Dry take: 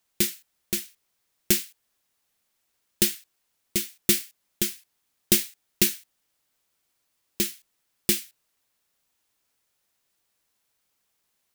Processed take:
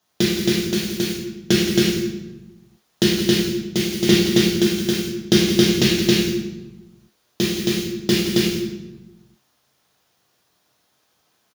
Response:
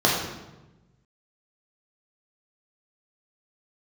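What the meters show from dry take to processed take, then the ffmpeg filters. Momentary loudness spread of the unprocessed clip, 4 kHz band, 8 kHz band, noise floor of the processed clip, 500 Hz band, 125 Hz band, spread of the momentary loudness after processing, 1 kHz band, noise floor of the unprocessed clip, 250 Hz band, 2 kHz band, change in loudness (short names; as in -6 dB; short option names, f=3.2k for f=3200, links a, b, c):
18 LU, +10.5 dB, +1.0 dB, -67 dBFS, +16.5 dB, +17.5 dB, 11 LU, +15.0 dB, -75 dBFS, +16.5 dB, +10.5 dB, +6.0 dB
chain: -filter_complex "[0:a]aecho=1:1:169.1|271.1:0.251|0.891[a];[1:a]atrim=start_sample=2205[b];[a][b]afir=irnorm=-1:irlink=0,acrossover=split=5400[c][d];[d]acompressor=threshold=-24dB:ratio=4:attack=1:release=60[e];[c][e]amix=inputs=2:normalize=0,volume=-7.5dB"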